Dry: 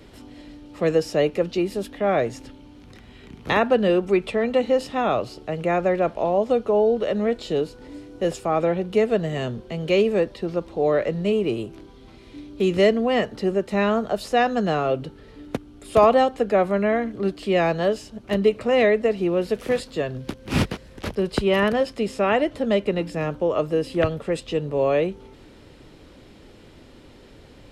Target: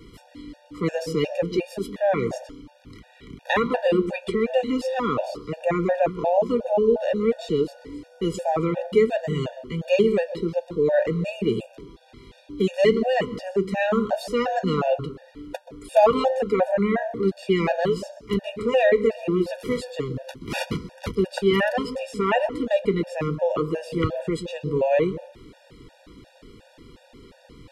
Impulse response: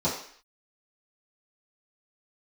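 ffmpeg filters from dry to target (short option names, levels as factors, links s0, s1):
-filter_complex "[0:a]flanger=delay=5.8:depth=1.6:regen=-73:speed=1.6:shape=sinusoidal,asplit=2[s0][s1];[1:a]atrim=start_sample=2205,adelay=125[s2];[s1][s2]afir=irnorm=-1:irlink=0,volume=0.0501[s3];[s0][s3]amix=inputs=2:normalize=0,afftfilt=real='re*gt(sin(2*PI*2.8*pts/sr)*(1-2*mod(floor(b*sr/1024/480),2)),0)':imag='im*gt(sin(2*PI*2.8*pts/sr)*(1-2*mod(floor(b*sr/1024/480),2)),0)':win_size=1024:overlap=0.75,volume=2"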